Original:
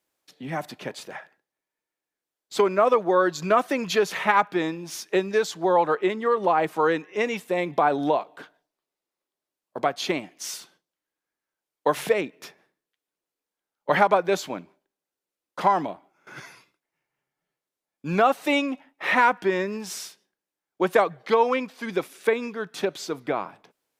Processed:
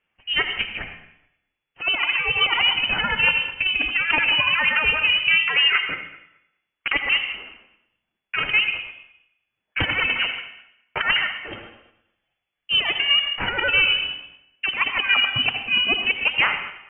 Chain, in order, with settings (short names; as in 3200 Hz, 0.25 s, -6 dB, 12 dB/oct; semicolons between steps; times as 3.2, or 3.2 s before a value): regenerating reverse delay 0.151 s, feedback 40%, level -13 dB; notches 50/100/150/200 Hz; dynamic EQ 220 Hz, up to +4 dB, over -40 dBFS, Q 1.7; negative-ratio compressor -23 dBFS, ratio -0.5; tempo 0.71×; on a send at -8 dB: reverb RT60 1.3 s, pre-delay 0.11 s; on the sum: speed mistake 7.5 ips tape played at 15 ips; inverted band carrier 3400 Hz; gain +5 dB